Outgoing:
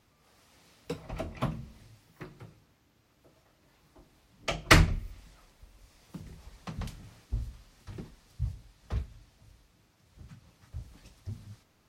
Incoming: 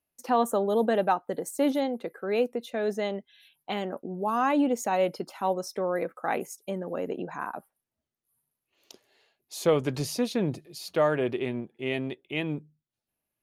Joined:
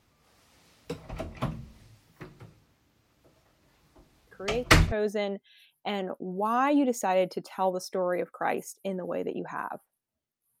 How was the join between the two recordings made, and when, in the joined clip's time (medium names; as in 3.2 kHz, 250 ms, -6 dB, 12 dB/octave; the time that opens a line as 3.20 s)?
outgoing
4.27 s: add incoming from 2.10 s 0.65 s -6 dB
4.92 s: go over to incoming from 2.75 s